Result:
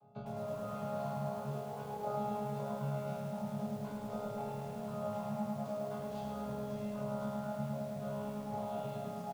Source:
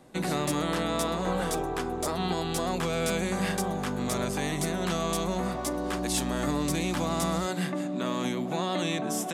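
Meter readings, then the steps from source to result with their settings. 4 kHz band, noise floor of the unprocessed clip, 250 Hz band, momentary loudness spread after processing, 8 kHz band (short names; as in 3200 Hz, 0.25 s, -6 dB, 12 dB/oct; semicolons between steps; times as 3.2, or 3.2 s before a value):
-23.5 dB, -33 dBFS, -11.0 dB, 3 LU, -25.0 dB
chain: chord vocoder bare fifth, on C#3; reverb removal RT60 1 s; LPF 2500 Hz 12 dB/oct; compressor 10:1, threshold -33 dBFS, peak gain reduction 10 dB; fixed phaser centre 780 Hz, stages 4; chorus 0.22 Hz, delay 17 ms, depth 7.1 ms; doubler 41 ms -9 dB; flutter echo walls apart 4.7 m, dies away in 0.48 s; lo-fi delay 0.106 s, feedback 80%, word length 10-bit, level -4 dB; gain +2 dB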